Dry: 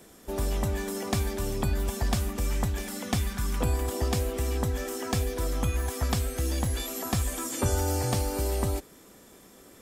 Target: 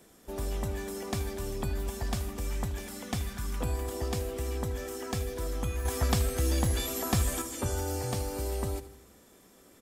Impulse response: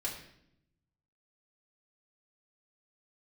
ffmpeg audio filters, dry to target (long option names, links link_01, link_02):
-filter_complex "[0:a]asettb=1/sr,asplit=3[link_01][link_02][link_03];[link_01]atrim=end=5.854[link_04];[link_02]atrim=start=5.85:end=7.42,asetpts=PTS-STARTPTS,afade=type=in:duration=0.004:curve=qsin,afade=type=out:start_time=1.566:duration=0.004:curve=qsin,acontrast=53[link_05];[link_03]atrim=start=7.416[link_06];[link_04][link_05]acrossfade=duration=0.004:curve1=hsin:curve2=qsin[link_07];[link_07][link_06]acrossfade=duration=0.004:curve1=qsin:curve2=hsin,aecho=1:1:79|158|237|316|395|474:0.158|0.0919|0.0533|0.0309|0.0179|0.0104,volume=-5.5dB"